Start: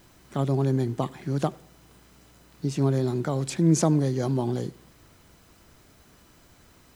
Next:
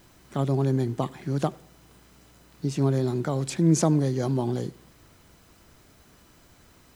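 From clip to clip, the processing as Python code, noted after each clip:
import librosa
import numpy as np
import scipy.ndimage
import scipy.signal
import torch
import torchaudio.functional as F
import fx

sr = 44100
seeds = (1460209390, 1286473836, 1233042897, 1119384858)

y = x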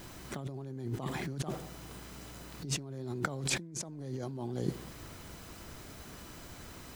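y = fx.over_compress(x, sr, threshold_db=-36.0, ratio=-1.0)
y = F.gain(torch.from_numpy(y), -2.5).numpy()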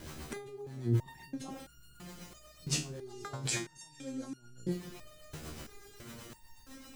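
y = fx.echo_diffused(x, sr, ms=464, feedback_pct=53, wet_db=-15.0)
y = fx.rotary(y, sr, hz=8.0)
y = fx.resonator_held(y, sr, hz=3.0, low_hz=77.0, high_hz=1400.0)
y = F.gain(torch.from_numpy(y), 13.0).numpy()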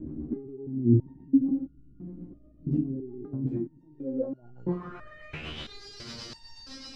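y = fx.filter_sweep_lowpass(x, sr, from_hz=280.0, to_hz=4800.0, start_s=3.78, end_s=5.86, q=7.0)
y = F.gain(torch.from_numpy(y), 4.5).numpy()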